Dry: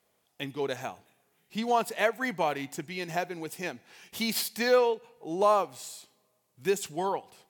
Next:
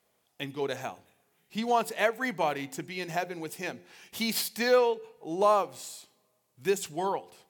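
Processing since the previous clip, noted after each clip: de-hum 88.69 Hz, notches 6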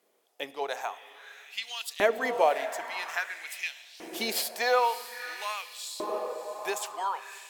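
diffused feedback echo 0.61 s, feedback 50%, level -11.5 dB; LFO high-pass saw up 0.5 Hz 290–4100 Hz; digital reverb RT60 1.9 s, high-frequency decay 0.25×, pre-delay 30 ms, DRR 19 dB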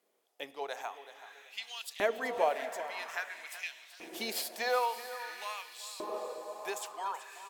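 feedback echo 0.379 s, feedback 28%, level -13.5 dB; gain -6 dB

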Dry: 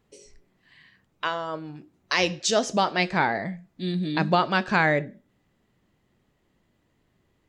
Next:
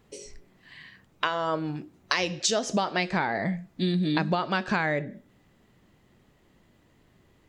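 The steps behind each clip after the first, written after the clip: compressor 16:1, threshold -29 dBFS, peak gain reduction 14 dB; gain +7 dB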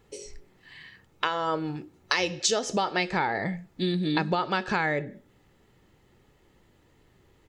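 comb 2.3 ms, depth 35%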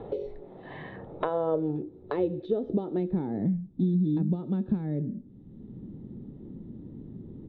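synth low-pass 3700 Hz, resonance Q 14; low-pass sweep 650 Hz -> 230 Hz, 0.99–3.64; three-band squash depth 70%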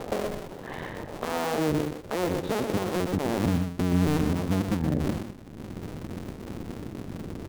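cycle switcher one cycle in 2, muted; limiter -25 dBFS, peak gain reduction 9.5 dB; on a send: echo 0.123 s -7 dB; on the sum: gain +8 dB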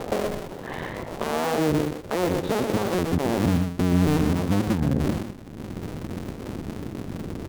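in parallel at -5 dB: one-sided clip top -22 dBFS; on the sum: record warp 33 1/3 rpm, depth 160 cents

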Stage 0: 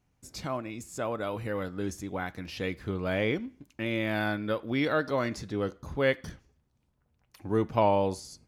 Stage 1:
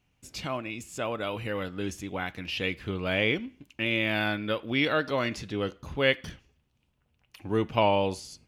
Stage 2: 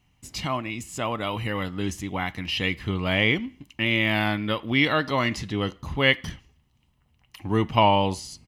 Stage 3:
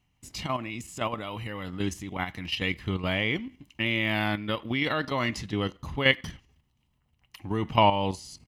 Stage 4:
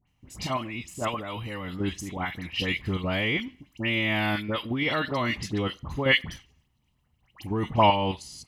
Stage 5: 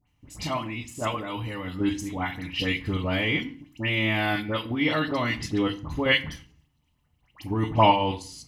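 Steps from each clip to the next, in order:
bell 2800 Hz +12 dB 0.72 oct
comb 1 ms, depth 43%; gain +4.5 dB
level quantiser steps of 9 dB
dispersion highs, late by 76 ms, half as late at 1800 Hz; gain +1 dB
reverb RT60 0.45 s, pre-delay 3 ms, DRR 7.5 dB

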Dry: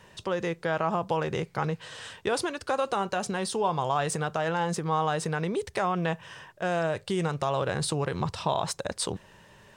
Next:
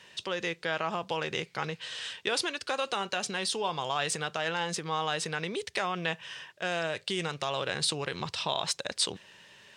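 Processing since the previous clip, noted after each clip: weighting filter D; gain -5 dB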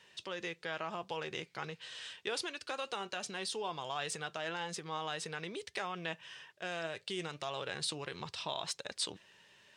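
flange 1.7 Hz, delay 2.1 ms, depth 1.3 ms, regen +79%; gain -3.5 dB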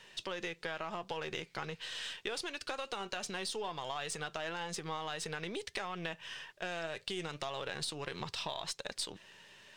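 half-wave gain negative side -3 dB; compressor, threshold -42 dBFS, peak gain reduction 9.5 dB; gain +6.5 dB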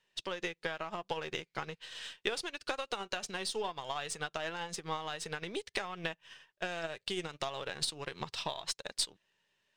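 upward expander 2.5:1, over -53 dBFS; gain +7 dB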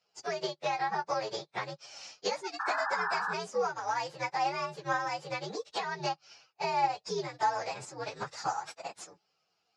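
inharmonic rescaling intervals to 124%; speaker cabinet 170–5500 Hz, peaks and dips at 240 Hz -8 dB, 830 Hz +9 dB, 3000 Hz -7 dB; painted sound noise, 2.59–3.34, 770–1800 Hz -41 dBFS; gain +7.5 dB

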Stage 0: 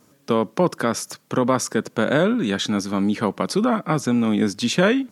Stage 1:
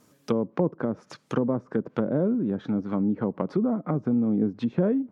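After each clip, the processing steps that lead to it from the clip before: treble ducked by the level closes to 490 Hz, closed at -17.5 dBFS; gain -3.5 dB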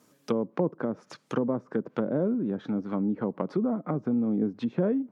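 Bessel high-pass 150 Hz; gain -1.5 dB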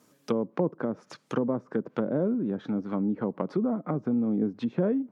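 nothing audible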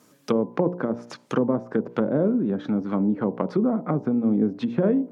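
de-hum 59.17 Hz, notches 17; gain +5.5 dB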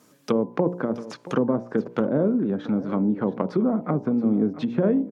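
echo 0.676 s -16.5 dB

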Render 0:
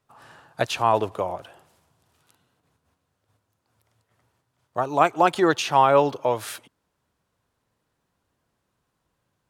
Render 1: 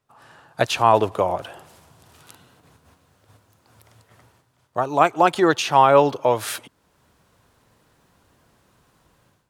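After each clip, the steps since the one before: AGC gain up to 16 dB; gain -1 dB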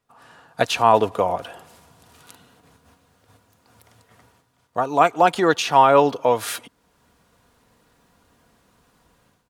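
comb 4.2 ms, depth 34%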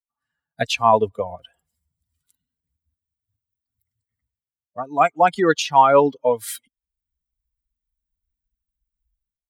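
per-bin expansion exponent 2; gain +3 dB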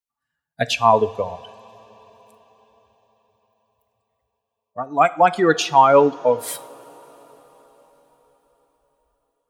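two-slope reverb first 0.45 s, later 4.9 s, from -17 dB, DRR 13.5 dB; gain +1 dB

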